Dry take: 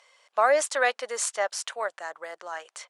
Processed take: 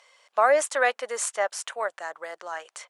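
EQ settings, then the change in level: dynamic bell 4.6 kHz, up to -6 dB, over -47 dBFS, Q 1.3; +1.5 dB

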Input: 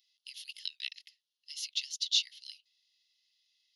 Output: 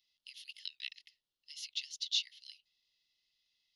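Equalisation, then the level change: tilt EQ -3 dB/octave; band-stop 1.6 kHz, Q 12; +1.0 dB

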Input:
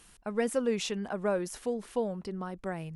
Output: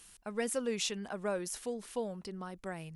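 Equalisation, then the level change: treble shelf 2.4 kHz +9.5 dB; -6.0 dB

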